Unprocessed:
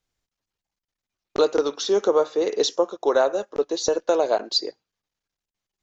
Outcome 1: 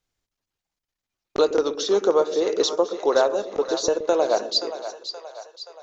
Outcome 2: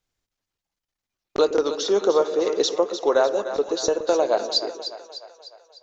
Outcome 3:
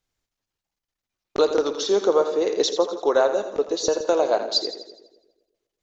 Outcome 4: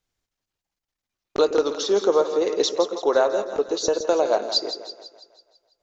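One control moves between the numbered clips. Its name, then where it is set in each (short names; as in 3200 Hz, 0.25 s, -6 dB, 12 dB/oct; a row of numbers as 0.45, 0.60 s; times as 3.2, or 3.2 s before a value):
split-band echo, highs: 526, 301, 83, 165 ms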